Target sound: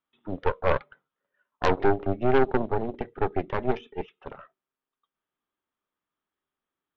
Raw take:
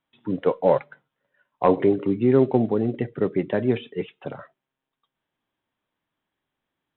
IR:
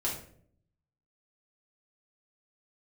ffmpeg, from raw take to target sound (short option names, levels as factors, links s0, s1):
-af "equalizer=f=125:t=o:w=0.33:g=-10,equalizer=f=400:t=o:w=0.33:g=5,equalizer=f=1250:t=o:w=0.33:g=9,aeval=exprs='0.708*(cos(1*acos(clip(val(0)/0.708,-1,1)))-cos(1*PI/2))+0.224*(cos(6*acos(clip(val(0)/0.708,-1,1)))-cos(6*PI/2))':c=same,volume=0.355"